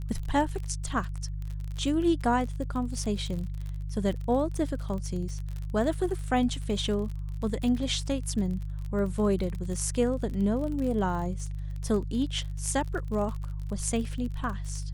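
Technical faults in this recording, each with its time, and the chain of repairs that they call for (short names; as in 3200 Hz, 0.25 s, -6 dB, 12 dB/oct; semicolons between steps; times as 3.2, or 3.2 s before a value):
crackle 42/s -34 dBFS
hum 50 Hz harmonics 3 -34 dBFS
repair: de-click; de-hum 50 Hz, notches 3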